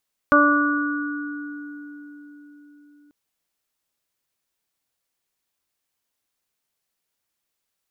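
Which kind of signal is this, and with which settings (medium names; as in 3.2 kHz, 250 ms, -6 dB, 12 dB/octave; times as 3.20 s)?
additive tone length 2.79 s, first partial 292 Hz, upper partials 0/-15/3/1 dB, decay 4.86 s, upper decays 0.97/0.68/1.85/3.18 s, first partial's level -17 dB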